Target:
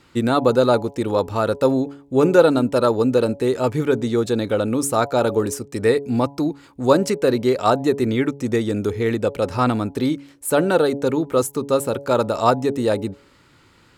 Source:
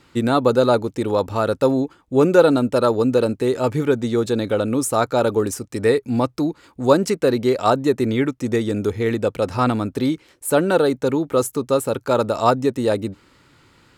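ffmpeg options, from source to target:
-af "bandreject=f=140.5:t=h:w=4,bandreject=f=281:t=h:w=4,bandreject=f=421.5:t=h:w=4,bandreject=f=562:t=h:w=4,bandreject=f=702.5:t=h:w=4,bandreject=f=843:t=h:w=4,bandreject=f=983.5:t=h:w=4"

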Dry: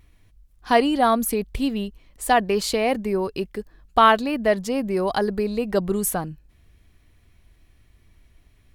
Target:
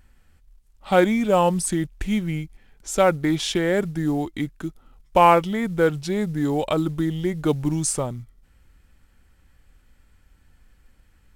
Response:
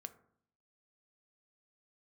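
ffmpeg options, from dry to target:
-af "acrusher=bits=8:mode=log:mix=0:aa=0.000001,asetrate=33957,aresample=44100"

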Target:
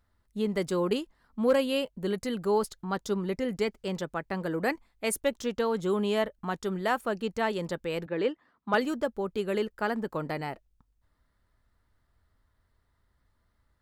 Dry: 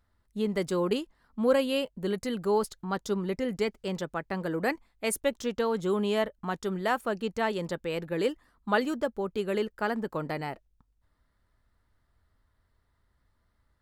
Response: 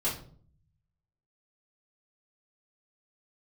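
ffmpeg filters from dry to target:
-filter_complex "[0:a]asettb=1/sr,asplit=3[a][b][c];[a]atrim=end=8.064[d];[b]atrim=start=8.06:end=8.74,asetpts=PTS-STARTPTS,afade=t=in:d=0.004:c=qsin,afade=t=out:st=0.676:d=0.004:c=qsin,highpass=180,lowpass=3.3k[e];[c]atrim=start=8.736[f];[d][e]acrossfade=d=0.004:c1=hsin:c2=qsin[g];[g][f]acrossfade=d=0.004:c1=qsin:c2=hsin,asoftclip=type=hard:threshold=-14.5dB"

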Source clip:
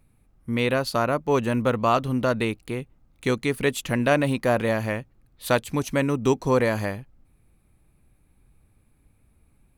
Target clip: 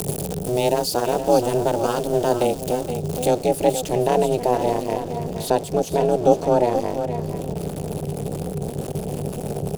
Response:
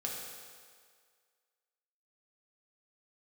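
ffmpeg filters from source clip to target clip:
-af "aeval=exprs='val(0)+0.5*0.0473*sgn(val(0))':c=same,asetnsamples=n=441:p=0,asendcmd='3.27 highshelf g -4;4.93 highshelf g -10.5',highshelf=f=5.1k:g=3.5,aecho=1:1:475:0.178,acompressor=mode=upward:threshold=-23dB:ratio=2.5,afreqshift=140,equalizer=f=125:t=o:w=1:g=7,equalizer=f=250:t=o:w=1:g=-9,equalizer=f=500:t=o:w=1:g=11,equalizer=f=1k:t=o:w=1:g=-10,equalizer=f=2k:t=o:w=1:g=-12,equalizer=f=8k:t=o:w=1:g=4,tremolo=f=250:d=0.947,bandreject=f=4k:w=28,aecho=1:1:470:0.282,volume=3.5dB"

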